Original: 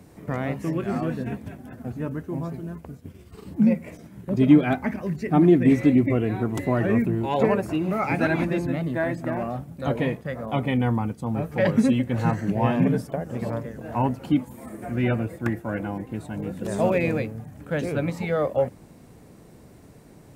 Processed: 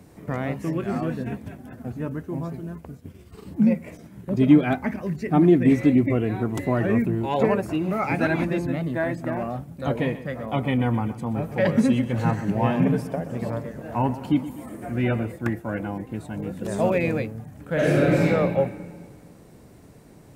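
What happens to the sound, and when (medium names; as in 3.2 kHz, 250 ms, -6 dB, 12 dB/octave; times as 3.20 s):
10.02–15.32 s: feedback delay 125 ms, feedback 58%, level -14.5 dB
17.73–18.26 s: reverb throw, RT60 1.8 s, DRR -7.5 dB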